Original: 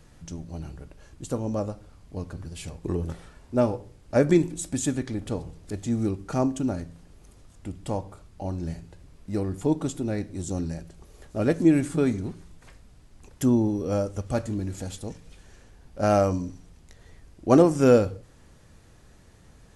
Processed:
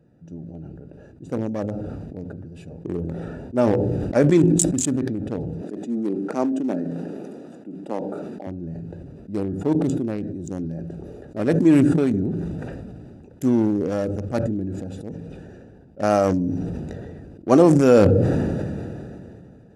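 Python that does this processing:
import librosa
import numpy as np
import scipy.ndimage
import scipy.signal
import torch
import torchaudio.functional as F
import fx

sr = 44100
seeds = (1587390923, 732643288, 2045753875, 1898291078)

y = fx.highpass(x, sr, hz=210.0, slope=24, at=(5.61, 8.47))
y = fx.wiener(y, sr, points=41)
y = scipy.signal.sosfilt(scipy.signal.butter(2, 150.0, 'highpass', fs=sr, output='sos'), y)
y = fx.sustainer(y, sr, db_per_s=22.0)
y = y * librosa.db_to_amplitude(2.5)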